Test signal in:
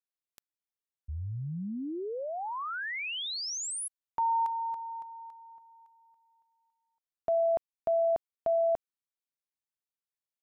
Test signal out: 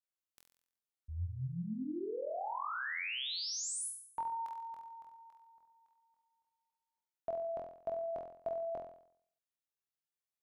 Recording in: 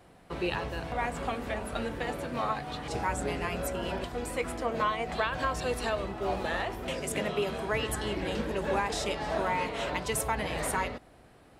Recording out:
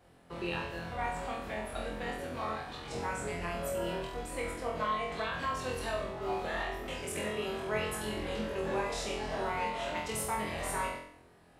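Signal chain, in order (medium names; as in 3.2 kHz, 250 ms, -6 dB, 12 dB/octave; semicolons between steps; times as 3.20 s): flutter echo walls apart 4 m, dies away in 0.63 s; trim -7.5 dB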